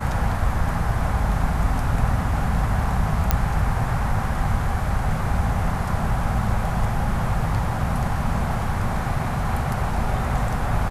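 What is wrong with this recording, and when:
3.31 s: pop -3 dBFS

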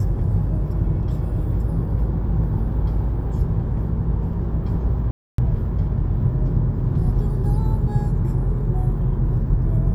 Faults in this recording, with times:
5.11–5.38 s: dropout 273 ms

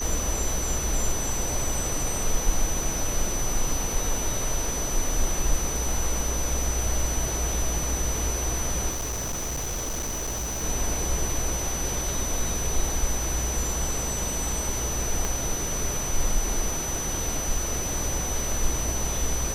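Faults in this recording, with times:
whine 6 kHz -30 dBFS
8.90–10.64 s: clipped -26.5 dBFS
15.25 s: pop

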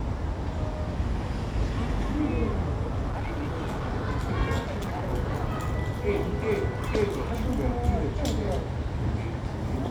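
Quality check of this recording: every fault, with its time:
3.09–3.83 s: clipped -27 dBFS
4.59–5.10 s: clipped -27.5 dBFS

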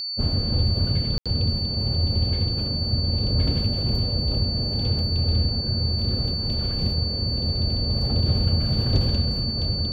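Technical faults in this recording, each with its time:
whine 4.5 kHz -27 dBFS
1.18–1.26 s: dropout 76 ms

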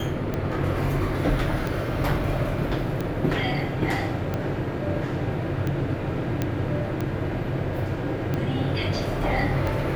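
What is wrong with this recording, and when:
tick 45 rpm -15 dBFS
6.42 s: pop -11 dBFS

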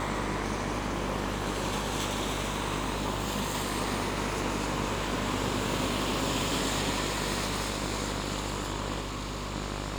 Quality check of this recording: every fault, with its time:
buzz 50 Hz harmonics 36 -36 dBFS
9.00–9.55 s: clipped -31 dBFS

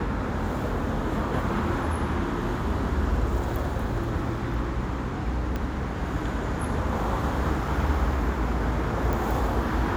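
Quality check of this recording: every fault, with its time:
5.56 s: pop -17 dBFS
9.13 s: pop

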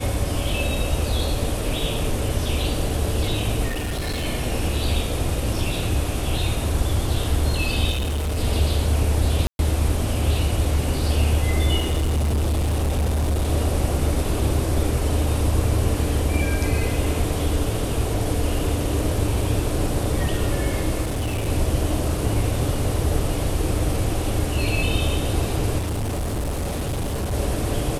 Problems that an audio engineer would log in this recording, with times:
3.68–4.26 s: clipped -22.5 dBFS
7.90–8.38 s: clipped -21 dBFS
9.47–9.59 s: dropout 121 ms
11.79–13.50 s: clipped -18 dBFS
21.01–21.49 s: clipped -21 dBFS
25.78–27.34 s: clipped -22 dBFS

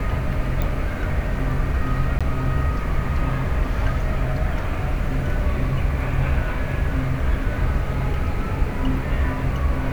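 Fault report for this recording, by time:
0.62 s: pop
2.19–2.21 s: dropout 16 ms

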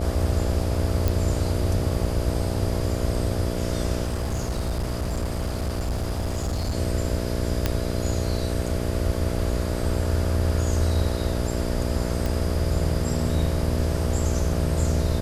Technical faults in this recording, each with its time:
buzz 60 Hz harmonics 11 -28 dBFS
1.08 s: pop
4.05–6.75 s: clipped -22.5 dBFS
7.66 s: pop -7 dBFS
12.26 s: pop

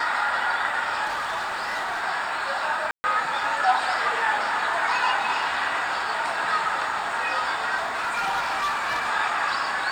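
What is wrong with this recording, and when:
1.05–2.04 s: clipped -24 dBFS
2.91–3.04 s: dropout 130 ms
7.76–9.10 s: clipped -22 dBFS

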